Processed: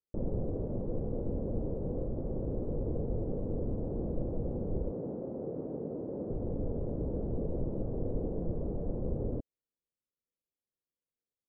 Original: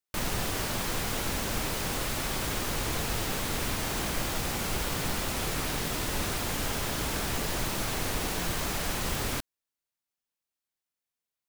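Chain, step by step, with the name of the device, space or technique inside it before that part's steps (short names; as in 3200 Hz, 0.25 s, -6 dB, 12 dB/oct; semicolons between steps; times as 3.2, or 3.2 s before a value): 4.91–6.3 HPF 200 Hz 12 dB/oct; under water (LPF 500 Hz 24 dB/oct; bell 510 Hz +6.5 dB 0.4 oct)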